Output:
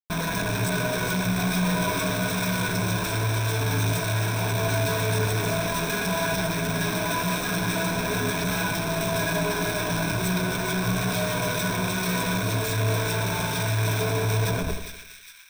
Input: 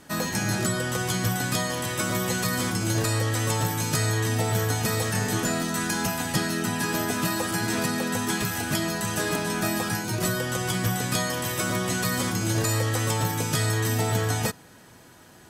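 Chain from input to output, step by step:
tape delay 120 ms, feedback 65%, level −6.5 dB, low-pass 4,100 Hz
flanger 0.67 Hz, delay 5.5 ms, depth 1.2 ms, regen +8%
comparator with hysteresis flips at −34.5 dBFS
EQ curve with evenly spaced ripples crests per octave 1.6, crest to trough 13 dB
echo with a time of its own for lows and highs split 1,700 Hz, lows 83 ms, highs 407 ms, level −7.5 dB

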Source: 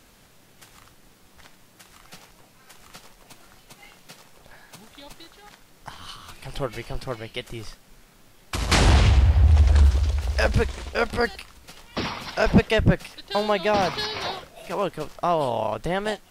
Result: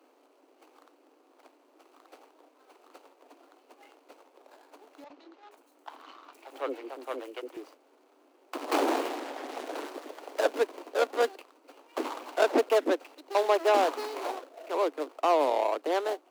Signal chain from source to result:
running median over 25 samples
Butterworth high-pass 270 Hz 96 dB per octave
0:05.04–0:07.57: three-band delay without the direct sound mids, lows, highs 60/470 ms, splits 460/5,800 Hz

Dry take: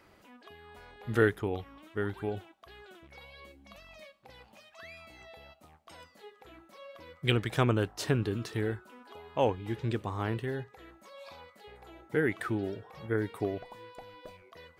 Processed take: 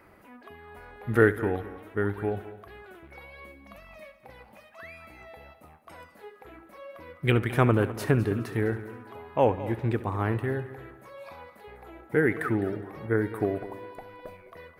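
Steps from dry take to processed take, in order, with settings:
flat-topped bell 4,800 Hz −10.5 dB
echo machine with several playback heads 69 ms, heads first and third, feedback 44%, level −16 dB
level +5 dB

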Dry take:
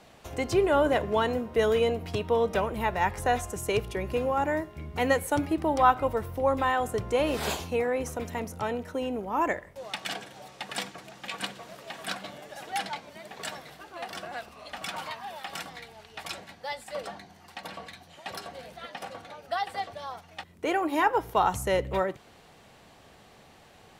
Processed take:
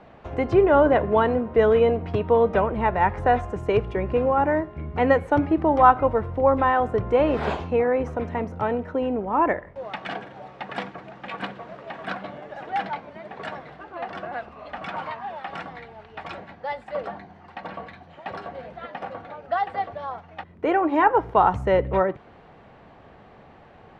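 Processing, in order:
low-pass filter 1,700 Hz 12 dB per octave
level +6.5 dB

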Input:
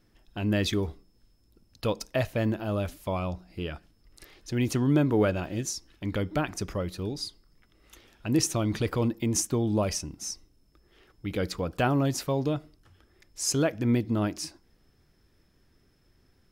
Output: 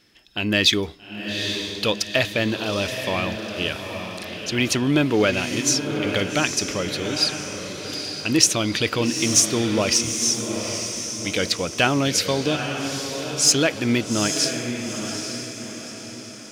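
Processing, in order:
meter weighting curve D
in parallel at −10 dB: gain into a clipping stage and back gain 20 dB
on the sum: feedback delay with all-pass diffusion 848 ms, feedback 47%, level −6.5 dB
level +3 dB

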